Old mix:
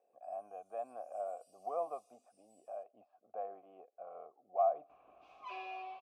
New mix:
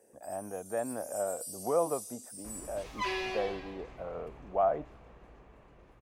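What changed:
second sound: entry -2.45 s; master: remove vowel filter a

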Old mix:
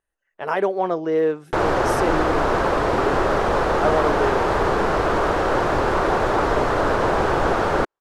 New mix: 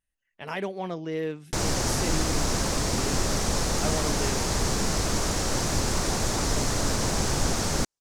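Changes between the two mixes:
background: add resonant high shelf 4300 Hz +13 dB, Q 1.5; master: add band shelf 730 Hz -12 dB 2.6 oct

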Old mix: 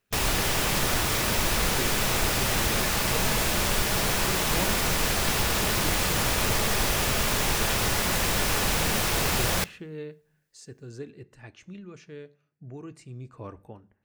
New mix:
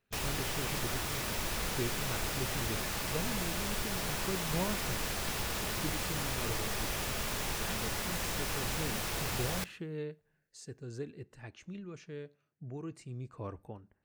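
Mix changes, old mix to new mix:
speech: send -9.0 dB; background -10.5 dB

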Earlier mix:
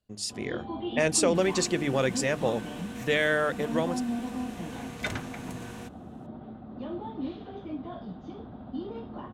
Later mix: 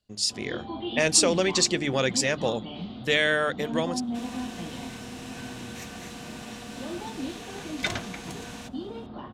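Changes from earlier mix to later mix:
second sound: entry +2.80 s; master: add bell 4600 Hz +9 dB 1.8 oct

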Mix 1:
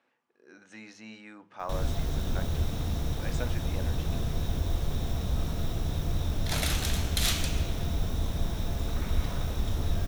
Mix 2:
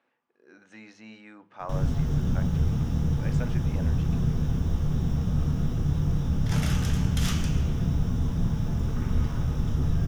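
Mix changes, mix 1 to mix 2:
background: send on; master: add high shelf 5500 Hz -9.5 dB

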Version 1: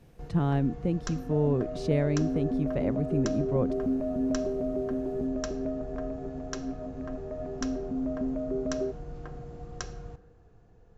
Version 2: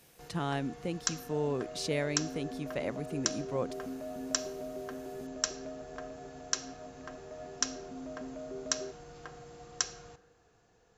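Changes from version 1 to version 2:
second sound -5.5 dB; master: add tilt +4 dB/oct

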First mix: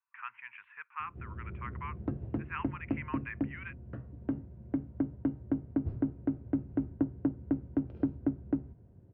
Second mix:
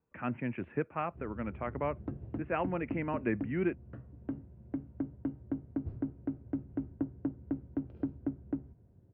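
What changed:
speech: remove elliptic high-pass 1000 Hz, stop band 40 dB; background -4.5 dB

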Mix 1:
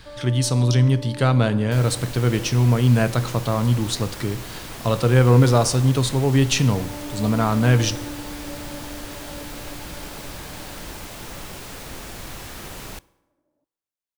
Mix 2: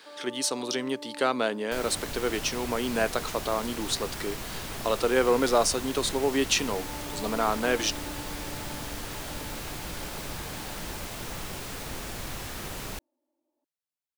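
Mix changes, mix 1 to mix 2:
speech: add HPF 300 Hz 24 dB/oct; first sound: add rippled Chebyshev high-pass 240 Hz, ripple 9 dB; reverb: off

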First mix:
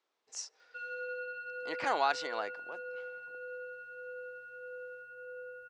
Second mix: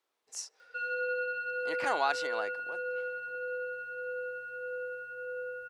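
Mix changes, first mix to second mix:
speech: remove LPF 7200 Hz 24 dB/oct; background +7.0 dB

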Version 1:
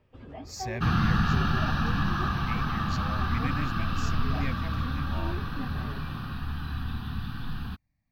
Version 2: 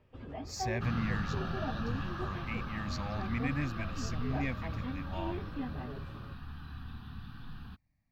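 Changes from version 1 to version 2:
second sound -11.5 dB; master: add high shelf 8400 Hz -5 dB

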